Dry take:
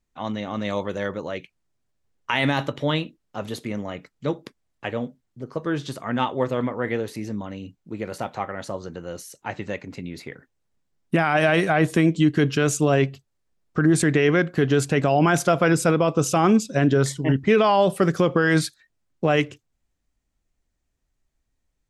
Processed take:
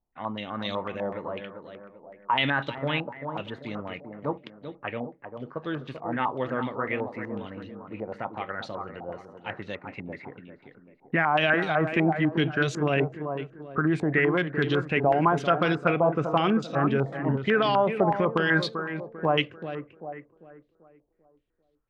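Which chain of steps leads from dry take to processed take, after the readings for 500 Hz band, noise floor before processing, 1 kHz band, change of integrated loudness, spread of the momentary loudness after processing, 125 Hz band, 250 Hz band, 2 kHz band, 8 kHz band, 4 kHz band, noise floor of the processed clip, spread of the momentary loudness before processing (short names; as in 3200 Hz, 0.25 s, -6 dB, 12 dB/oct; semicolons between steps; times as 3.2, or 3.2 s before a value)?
-4.5 dB, -76 dBFS, -1.5 dB, -4.5 dB, 16 LU, -6.5 dB, -6.0 dB, -1.5 dB, under -20 dB, -1.5 dB, -67 dBFS, 16 LU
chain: tape echo 0.392 s, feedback 48%, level -6 dB, low-pass 1300 Hz; stepped low-pass 8 Hz 810–3800 Hz; gain -7 dB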